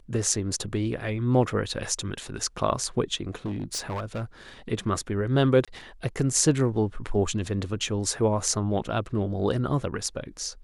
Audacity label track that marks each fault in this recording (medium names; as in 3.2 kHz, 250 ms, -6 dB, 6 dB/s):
3.350000	4.240000	clipped -27 dBFS
5.650000	5.680000	dropout 26 ms